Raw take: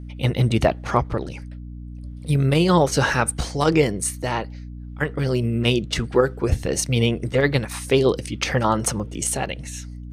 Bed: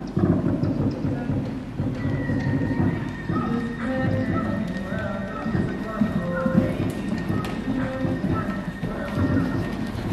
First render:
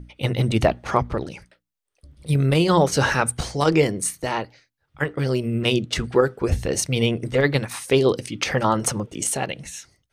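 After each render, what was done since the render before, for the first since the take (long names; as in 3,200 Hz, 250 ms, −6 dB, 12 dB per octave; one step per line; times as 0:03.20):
mains-hum notches 60/120/180/240/300 Hz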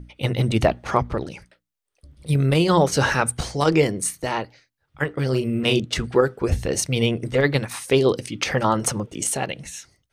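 0:05.29–0:05.80: double-tracking delay 38 ms −6 dB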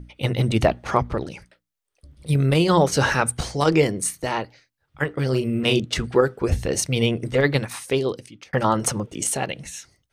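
0:07.61–0:08.53: fade out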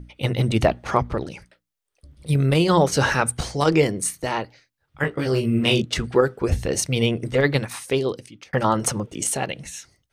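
0:05.02–0:05.82: double-tracking delay 18 ms −3 dB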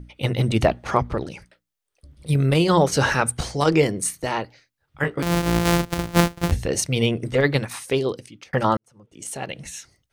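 0:05.22–0:06.52: samples sorted by size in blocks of 256 samples
0:08.77–0:09.64: fade in quadratic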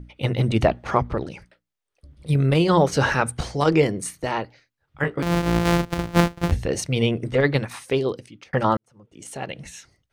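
high-shelf EQ 5,400 Hz −9 dB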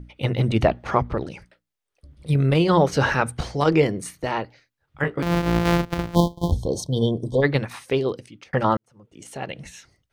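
0:06.15–0:07.43: time-frequency box erased 1,100–3,100 Hz
dynamic equaliser 8,600 Hz, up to −5 dB, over −48 dBFS, Q 0.98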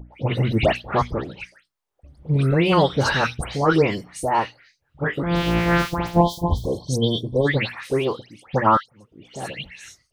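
all-pass dispersion highs, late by 149 ms, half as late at 2,500 Hz
auto-filter bell 0.48 Hz 760–3,900 Hz +9 dB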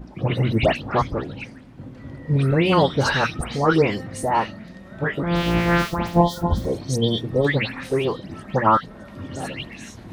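mix in bed −12.5 dB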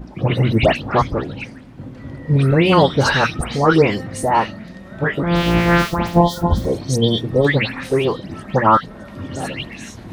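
level +4.5 dB
brickwall limiter −2 dBFS, peak gain reduction 2.5 dB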